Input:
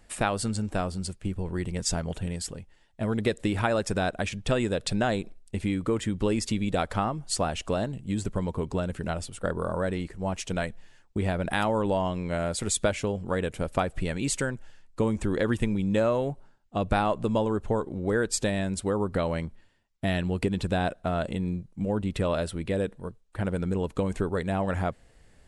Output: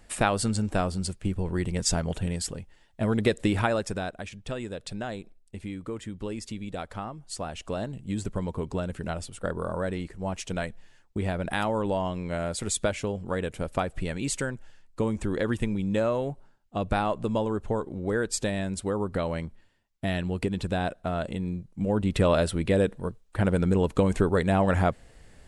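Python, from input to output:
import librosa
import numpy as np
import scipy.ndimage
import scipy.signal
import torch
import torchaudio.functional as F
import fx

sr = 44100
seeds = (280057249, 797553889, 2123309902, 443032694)

y = fx.gain(x, sr, db=fx.line((3.54, 2.5), (4.23, -8.5), (7.29, -8.5), (8.01, -1.5), (21.55, -1.5), (22.22, 5.0)))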